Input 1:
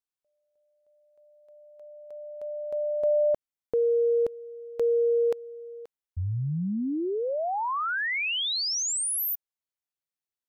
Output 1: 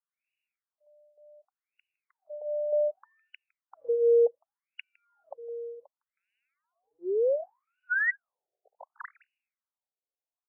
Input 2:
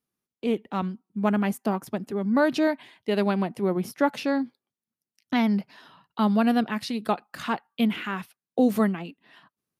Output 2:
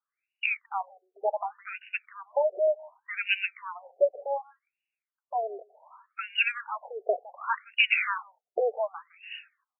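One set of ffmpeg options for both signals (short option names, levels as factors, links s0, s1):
-filter_complex "[0:a]acrossover=split=360|1900[s0][s1][s2];[s0]acompressor=threshold=0.0158:ratio=6:attack=0.32:release=154[s3];[s1]flanger=delay=1.4:depth=3.9:regen=-35:speed=0.56:shape=triangular[s4];[s3][s4][s2]amix=inputs=3:normalize=0,aresample=22050,aresample=44100,aexciter=amount=14.4:drive=4.4:freq=2700,acontrast=27,asplit=2[s5][s6];[s6]aecho=0:1:159:0.0708[s7];[s5][s7]amix=inputs=2:normalize=0,afftfilt=real='re*between(b*sr/1024,520*pow(2100/520,0.5+0.5*sin(2*PI*0.67*pts/sr))/1.41,520*pow(2100/520,0.5+0.5*sin(2*PI*0.67*pts/sr))*1.41)':imag='im*between(b*sr/1024,520*pow(2100/520,0.5+0.5*sin(2*PI*0.67*pts/sr))/1.41,520*pow(2100/520,0.5+0.5*sin(2*PI*0.67*pts/sr))*1.41)':win_size=1024:overlap=0.75,volume=1.19"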